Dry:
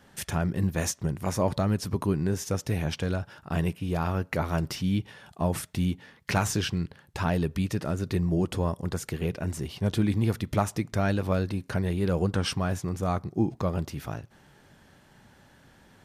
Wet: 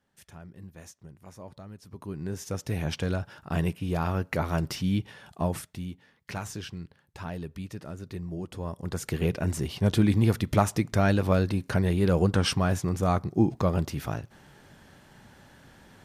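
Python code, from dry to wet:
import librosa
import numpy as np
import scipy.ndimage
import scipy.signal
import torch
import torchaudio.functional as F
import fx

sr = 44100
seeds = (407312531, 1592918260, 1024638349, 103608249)

y = fx.gain(x, sr, db=fx.line((1.81, -19.0), (2.25, -7.0), (2.95, 0.0), (5.41, 0.0), (5.84, -10.0), (8.51, -10.0), (9.16, 3.0)))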